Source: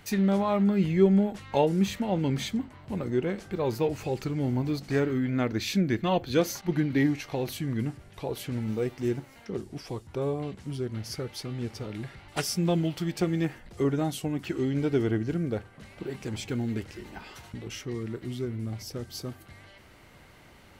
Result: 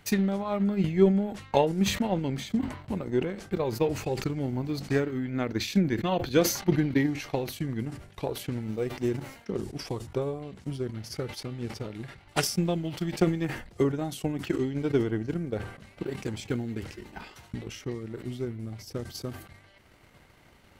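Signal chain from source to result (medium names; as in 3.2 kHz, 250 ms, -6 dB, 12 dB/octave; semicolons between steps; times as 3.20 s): transient shaper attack +9 dB, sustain -9 dB; decay stretcher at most 91 dB/s; trim -4.5 dB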